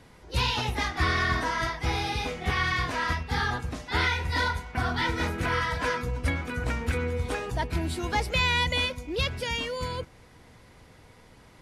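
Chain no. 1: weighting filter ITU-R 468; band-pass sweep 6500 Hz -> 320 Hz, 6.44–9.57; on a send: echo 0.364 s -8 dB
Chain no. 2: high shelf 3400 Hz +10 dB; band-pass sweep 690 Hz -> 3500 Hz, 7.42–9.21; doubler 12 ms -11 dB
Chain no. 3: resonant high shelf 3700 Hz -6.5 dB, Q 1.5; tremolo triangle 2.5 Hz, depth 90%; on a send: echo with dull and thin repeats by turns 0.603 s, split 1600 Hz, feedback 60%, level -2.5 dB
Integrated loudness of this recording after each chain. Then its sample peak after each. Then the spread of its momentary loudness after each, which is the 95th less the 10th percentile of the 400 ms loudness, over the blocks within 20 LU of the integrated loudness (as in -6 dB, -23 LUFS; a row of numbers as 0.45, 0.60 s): -33.0, -33.5, -31.0 LUFS; -16.5, -16.0, -13.0 dBFS; 11, 13, 10 LU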